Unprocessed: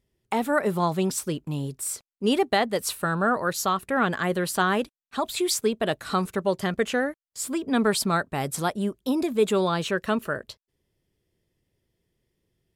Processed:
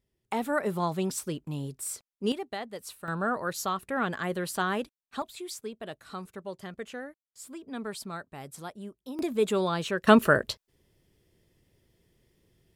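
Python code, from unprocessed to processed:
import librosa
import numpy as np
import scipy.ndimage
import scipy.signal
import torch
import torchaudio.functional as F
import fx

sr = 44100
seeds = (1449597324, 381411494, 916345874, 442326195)

y = fx.gain(x, sr, db=fx.steps((0.0, -5.0), (2.32, -14.0), (3.08, -6.0), (5.22, -14.5), (9.19, -4.0), (10.07, 7.5)))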